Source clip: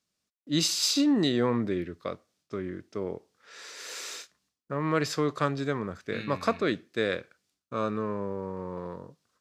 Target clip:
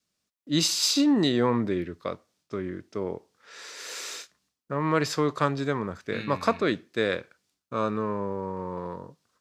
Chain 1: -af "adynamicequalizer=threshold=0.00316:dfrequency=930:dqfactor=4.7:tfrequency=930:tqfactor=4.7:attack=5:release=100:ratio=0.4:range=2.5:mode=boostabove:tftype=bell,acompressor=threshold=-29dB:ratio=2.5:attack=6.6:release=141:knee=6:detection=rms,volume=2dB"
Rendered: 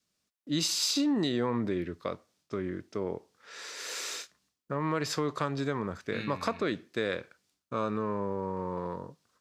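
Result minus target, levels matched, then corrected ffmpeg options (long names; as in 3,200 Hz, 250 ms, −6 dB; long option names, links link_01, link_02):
downward compressor: peak gain reduction +9 dB
-af "adynamicequalizer=threshold=0.00316:dfrequency=930:dqfactor=4.7:tfrequency=930:tqfactor=4.7:attack=5:release=100:ratio=0.4:range=2.5:mode=boostabove:tftype=bell,volume=2dB"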